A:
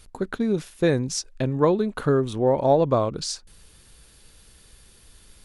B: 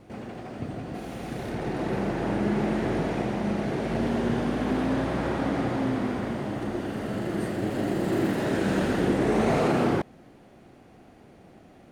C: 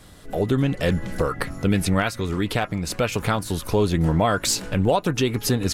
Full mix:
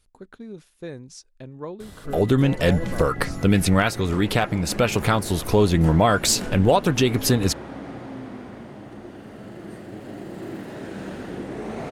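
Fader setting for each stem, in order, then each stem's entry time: -15.0 dB, -9.0 dB, +2.5 dB; 0.00 s, 2.30 s, 1.80 s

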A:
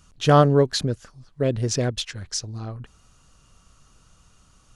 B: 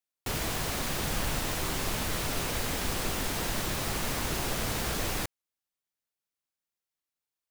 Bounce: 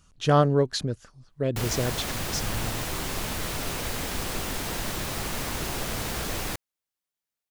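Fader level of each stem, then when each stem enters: -4.5 dB, +0.5 dB; 0.00 s, 1.30 s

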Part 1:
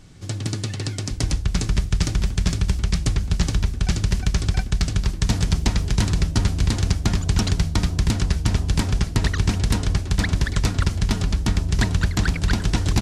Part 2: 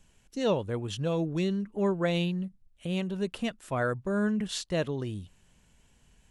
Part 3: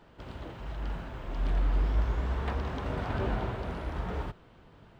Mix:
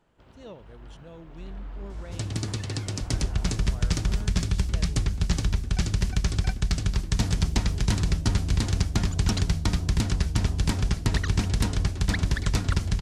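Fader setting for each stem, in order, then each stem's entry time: -4.0 dB, -17.5 dB, -11.0 dB; 1.90 s, 0.00 s, 0.00 s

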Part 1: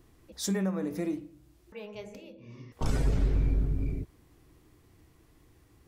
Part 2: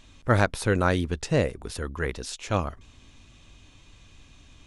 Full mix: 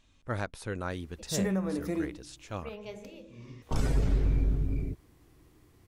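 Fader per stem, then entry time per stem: 0.0 dB, -12.5 dB; 0.90 s, 0.00 s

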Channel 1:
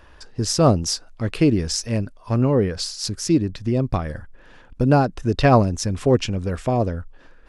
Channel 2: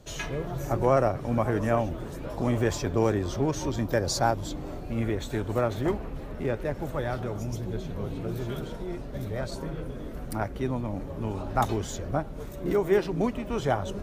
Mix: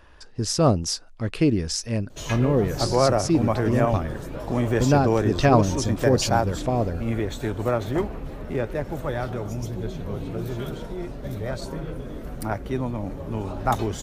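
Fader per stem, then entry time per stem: -3.0 dB, +2.5 dB; 0.00 s, 2.10 s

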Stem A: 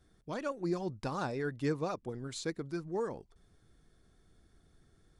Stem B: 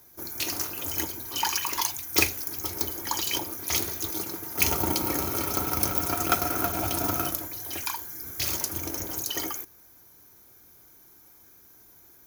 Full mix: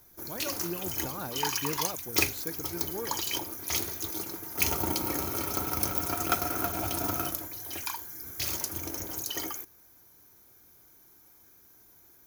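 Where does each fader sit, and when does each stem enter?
-3.0 dB, -3.5 dB; 0.00 s, 0.00 s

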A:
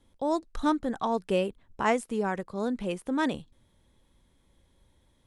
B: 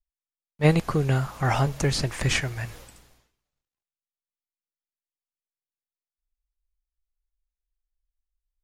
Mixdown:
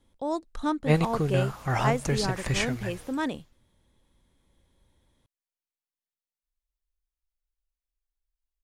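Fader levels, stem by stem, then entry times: -2.0 dB, -3.5 dB; 0.00 s, 0.25 s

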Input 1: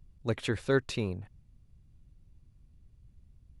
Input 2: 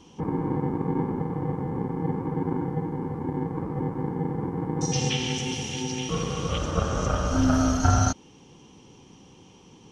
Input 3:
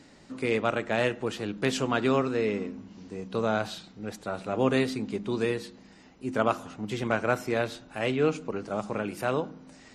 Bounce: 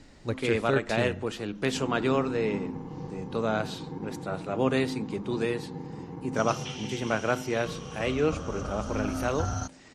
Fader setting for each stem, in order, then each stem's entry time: -0.5 dB, -10.5 dB, -1.0 dB; 0.00 s, 1.55 s, 0.00 s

